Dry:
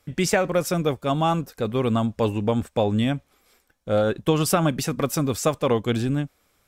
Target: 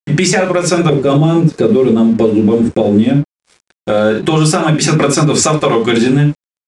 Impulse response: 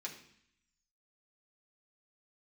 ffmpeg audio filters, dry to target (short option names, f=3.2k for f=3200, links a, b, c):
-filter_complex "[0:a]asettb=1/sr,asplit=3[a][b][c];[a]atrim=end=0.894[d];[b]atrim=start=0.89:end=3.16,asetpts=PTS-STARTPTS,afade=t=in:d=0.004:c=qsin,afade=t=out:st=2.266:d=0.004:c=qsin,lowshelf=f=610:t=q:w=1.5:g=9.5[e];[c]atrim=start=3.156[f];[d][e]acrossfade=d=0.004:c1=hsin:c2=qsin[g];[g][f]acrossfade=d=0.004:c1=qsin:c2=hsin[h];[1:a]atrim=start_sample=2205,atrim=end_sample=3969[i];[h][i]afir=irnorm=-1:irlink=0,acompressor=threshold=-30dB:ratio=16,aeval=exprs='sgn(val(0))*max(abs(val(0))-0.00119,0)':c=same,aresample=22050,aresample=44100,alimiter=level_in=26dB:limit=-1dB:release=50:level=0:latency=1,volume=-1dB"